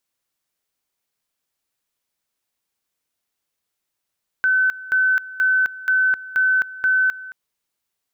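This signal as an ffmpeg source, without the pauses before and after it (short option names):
-f lavfi -i "aevalsrc='pow(10,(-14-18*gte(mod(t,0.48),0.26))/20)*sin(2*PI*1520*t)':d=2.88:s=44100"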